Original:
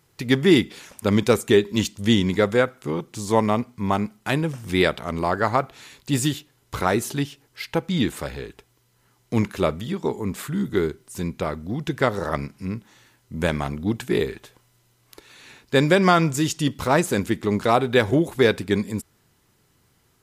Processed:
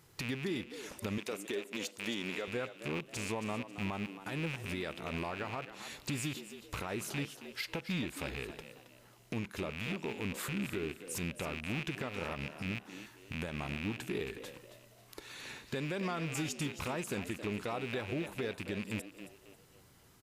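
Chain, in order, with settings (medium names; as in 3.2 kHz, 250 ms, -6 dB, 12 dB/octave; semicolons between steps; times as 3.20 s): rattle on loud lows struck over -32 dBFS, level -17 dBFS; 1.18–2.48 s: high-pass 310 Hz 12 dB/octave; compression 8:1, threshold -33 dBFS, peak gain reduction 21.5 dB; peak limiter -27 dBFS, peak gain reduction 9 dB; frequency-shifting echo 271 ms, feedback 35%, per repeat +91 Hz, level -12 dB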